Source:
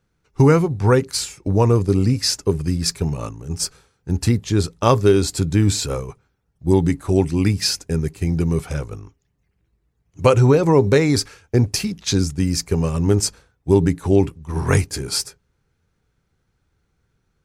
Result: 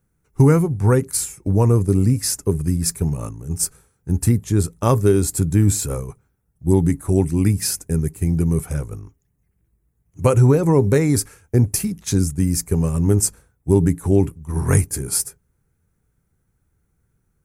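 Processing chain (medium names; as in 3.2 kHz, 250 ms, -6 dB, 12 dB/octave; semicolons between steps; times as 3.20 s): FFT filter 180 Hz 0 dB, 550 Hz -5 dB, 2 kHz -6 dB, 2.9 kHz -11 dB, 4.5 kHz -12 dB, 10 kHz +8 dB; trim +1.5 dB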